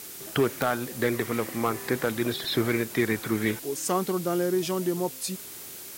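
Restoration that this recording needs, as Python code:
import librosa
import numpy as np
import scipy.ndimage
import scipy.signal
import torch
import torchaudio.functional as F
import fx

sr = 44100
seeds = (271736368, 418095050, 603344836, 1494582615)

y = fx.fix_declip(x, sr, threshold_db=-15.0)
y = fx.fix_declick_ar(y, sr, threshold=10.0)
y = fx.noise_reduce(y, sr, print_start_s=5.43, print_end_s=5.93, reduce_db=30.0)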